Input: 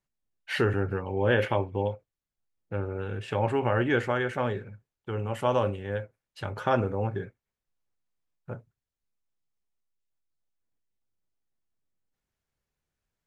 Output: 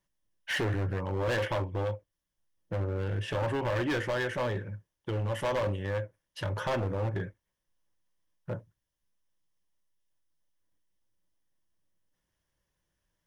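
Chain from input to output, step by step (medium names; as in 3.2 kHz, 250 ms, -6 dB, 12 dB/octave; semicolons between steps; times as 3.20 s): rippled EQ curve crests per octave 1.2, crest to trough 7 dB; in parallel at +3 dB: compression, threshold -34 dBFS, peak gain reduction 15 dB; on the sum: hard clipper -22.5 dBFS, distortion -8 dB; trim -4 dB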